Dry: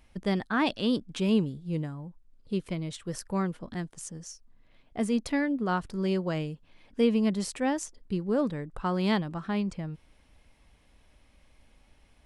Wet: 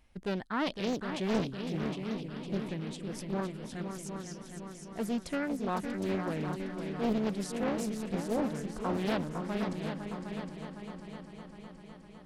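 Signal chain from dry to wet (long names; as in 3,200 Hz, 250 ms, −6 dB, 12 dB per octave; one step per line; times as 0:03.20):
0:06.33–0:07.13: transient designer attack −7 dB, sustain +11 dB
echo machine with several playback heads 254 ms, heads second and third, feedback 61%, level −7.5 dB
highs frequency-modulated by the lows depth 0.76 ms
level −5.5 dB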